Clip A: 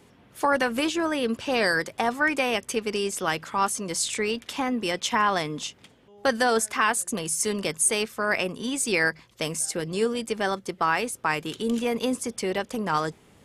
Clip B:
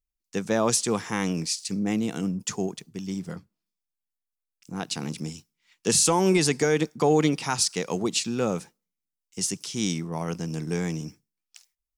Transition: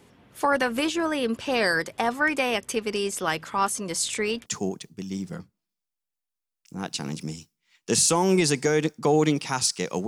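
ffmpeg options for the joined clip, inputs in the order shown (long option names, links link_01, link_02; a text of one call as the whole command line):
ffmpeg -i cue0.wav -i cue1.wav -filter_complex "[0:a]apad=whole_dur=10.07,atrim=end=10.07,atrim=end=4.462[link_01];[1:a]atrim=start=2.428:end=8.04[link_02];[link_01][link_02]acrossfade=duration=0.004:curve1=hsin:curve2=hsin" out.wav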